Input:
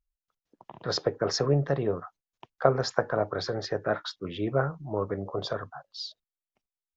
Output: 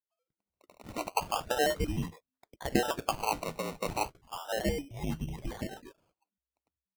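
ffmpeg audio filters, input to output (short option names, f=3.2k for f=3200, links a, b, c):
-filter_complex "[0:a]acrossover=split=1000[a][b];[a]adelay=100[c];[c][b]amix=inputs=2:normalize=0,lowpass=f=2.7k:t=q:w=0.5098,lowpass=f=2.7k:t=q:w=0.6013,lowpass=f=2.7k:t=q:w=0.9,lowpass=f=2.7k:t=q:w=2.563,afreqshift=-3200,acrusher=samples=21:mix=1:aa=0.000001:lfo=1:lforange=12.6:lforate=0.34,volume=-4dB"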